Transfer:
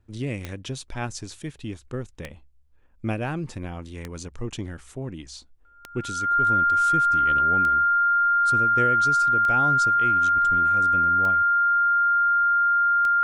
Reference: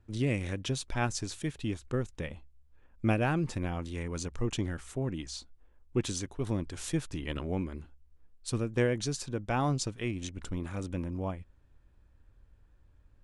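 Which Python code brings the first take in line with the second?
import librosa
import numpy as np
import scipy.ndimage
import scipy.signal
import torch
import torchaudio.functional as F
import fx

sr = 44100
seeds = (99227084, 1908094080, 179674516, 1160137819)

y = fx.fix_declick_ar(x, sr, threshold=10.0)
y = fx.notch(y, sr, hz=1400.0, q=30.0)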